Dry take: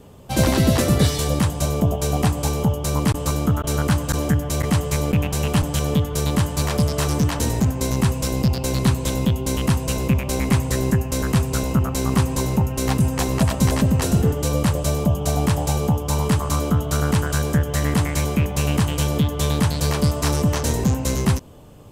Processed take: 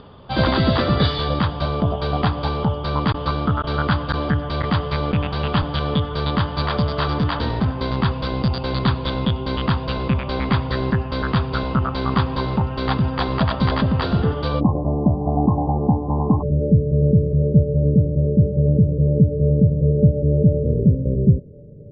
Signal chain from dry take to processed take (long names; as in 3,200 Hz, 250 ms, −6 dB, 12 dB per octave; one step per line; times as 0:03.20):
upward compression, threshold −39 dBFS
Chebyshev low-pass with heavy ripple 4,800 Hz, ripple 9 dB, from 0:14.59 1,100 Hz, from 0:16.41 600 Hz
level +7.5 dB